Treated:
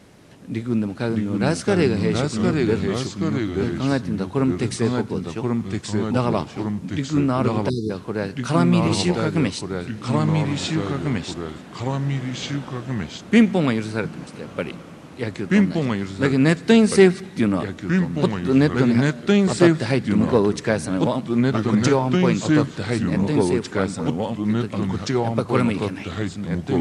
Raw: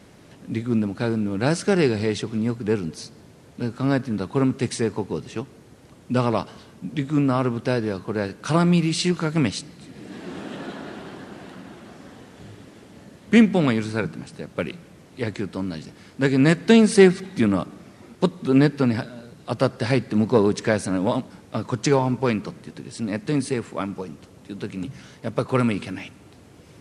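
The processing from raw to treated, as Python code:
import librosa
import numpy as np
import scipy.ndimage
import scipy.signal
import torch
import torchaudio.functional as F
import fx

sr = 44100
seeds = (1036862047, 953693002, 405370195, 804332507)

y = fx.echo_pitch(x, sr, ms=549, semitones=-2, count=2, db_per_echo=-3.0)
y = fx.spec_erase(y, sr, start_s=7.69, length_s=0.21, low_hz=470.0, high_hz=3500.0)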